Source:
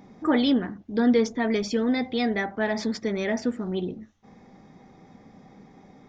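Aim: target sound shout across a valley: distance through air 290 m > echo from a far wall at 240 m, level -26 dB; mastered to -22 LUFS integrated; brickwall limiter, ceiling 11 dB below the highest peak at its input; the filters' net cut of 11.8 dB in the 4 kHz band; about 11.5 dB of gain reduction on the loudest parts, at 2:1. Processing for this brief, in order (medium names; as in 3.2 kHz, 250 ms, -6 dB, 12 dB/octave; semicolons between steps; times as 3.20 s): peaking EQ 4 kHz -6 dB; compression 2:1, threshold -38 dBFS; peak limiter -32.5 dBFS; distance through air 290 m; echo from a far wall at 240 m, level -26 dB; trim +21 dB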